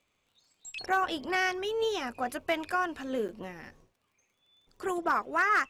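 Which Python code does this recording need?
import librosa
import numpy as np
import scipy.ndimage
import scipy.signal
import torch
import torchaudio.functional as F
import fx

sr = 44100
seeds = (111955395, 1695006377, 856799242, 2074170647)

y = fx.fix_declip(x, sr, threshold_db=-18.5)
y = fx.fix_declick_ar(y, sr, threshold=6.5)
y = fx.fix_interpolate(y, sr, at_s=(3.28,), length_ms=8.5)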